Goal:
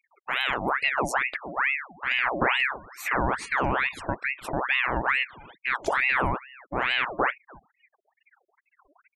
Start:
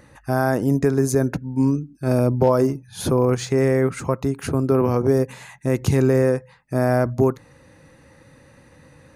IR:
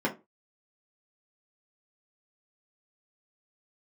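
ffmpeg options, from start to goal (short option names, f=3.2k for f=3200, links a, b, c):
-filter_complex "[0:a]asplit=2[a][b];[b]adelay=290,highpass=300,lowpass=3.4k,asoftclip=type=hard:threshold=-15dB,volume=-20dB[c];[a][c]amix=inputs=2:normalize=0,afftfilt=real='re*gte(hypot(re,im),0.0251)':imag='im*gte(hypot(re,im),0.0251)':win_size=1024:overlap=0.75,aeval=exprs='val(0)*sin(2*PI*1400*n/s+1400*0.7/2.3*sin(2*PI*2.3*n/s))':c=same,volume=-4.5dB"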